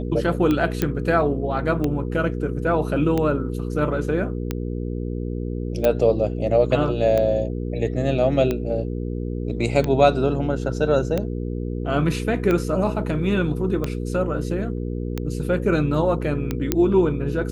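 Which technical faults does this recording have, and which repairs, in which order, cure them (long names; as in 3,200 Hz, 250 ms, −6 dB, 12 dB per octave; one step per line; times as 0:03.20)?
mains hum 60 Hz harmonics 8 −27 dBFS
scratch tick 45 rpm −11 dBFS
0:00.82: click −7 dBFS
0:05.85: click −8 dBFS
0:16.72: click −4 dBFS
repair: click removal
hum removal 60 Hz, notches 8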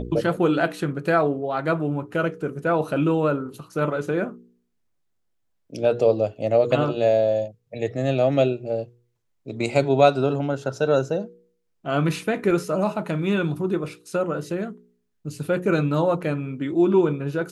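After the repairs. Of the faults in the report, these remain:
none of them is left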